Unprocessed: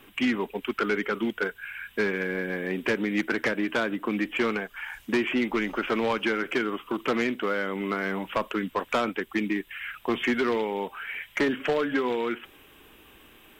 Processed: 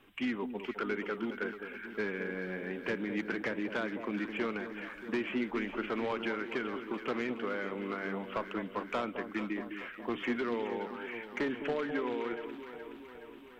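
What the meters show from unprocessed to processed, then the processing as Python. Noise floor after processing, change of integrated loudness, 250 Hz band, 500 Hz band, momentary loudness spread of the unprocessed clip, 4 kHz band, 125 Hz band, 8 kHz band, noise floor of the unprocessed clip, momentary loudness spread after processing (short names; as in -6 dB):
-50 dBFS, -8.0 dB, -7.5 dB, -7.5 dB, 6 LU, -10.5 dB, -7.5 dB, under -10 dB, -55 dBFS, 7 LU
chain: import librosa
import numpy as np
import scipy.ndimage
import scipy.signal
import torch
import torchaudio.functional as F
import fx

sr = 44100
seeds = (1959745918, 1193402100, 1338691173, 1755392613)

y = fx.lowpass(x, sr, hz=3600.0, slope=6)
y = fx.echo_alternate(y, sr, ms=210, hz=1000.0, feedback_pct=78, wet_db=-8.0)
y = y * librosa.db_to_amplitude(-8.5)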